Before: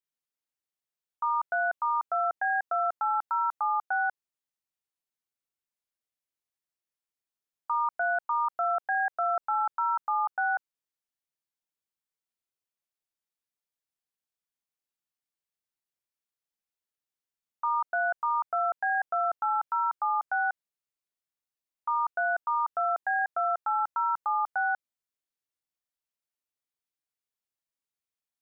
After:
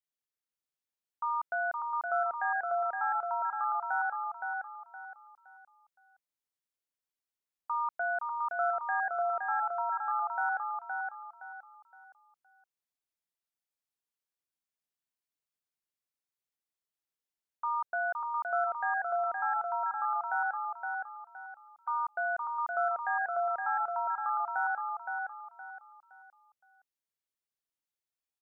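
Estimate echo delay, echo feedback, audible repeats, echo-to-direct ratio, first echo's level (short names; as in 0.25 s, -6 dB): 0.517 s, 32%, 4, -3.5 dB, -4.0 dB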